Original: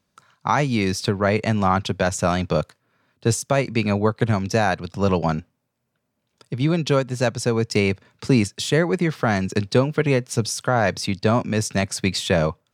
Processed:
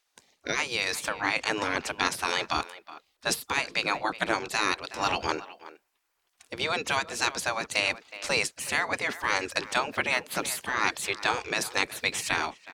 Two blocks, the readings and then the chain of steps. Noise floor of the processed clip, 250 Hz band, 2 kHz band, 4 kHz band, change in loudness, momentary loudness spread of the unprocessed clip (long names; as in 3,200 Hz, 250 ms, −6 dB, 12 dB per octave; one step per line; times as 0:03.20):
−76 dBFS, −16.5 dB, +0.5 dB, −0.5 dB, −6.5 dB, 4 LU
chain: gate on every frequency bin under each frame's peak −15 dB weak
far-end echo of a speakerphone 370 ms, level −16 dB
speech leveller 0.5 s
level +4 dB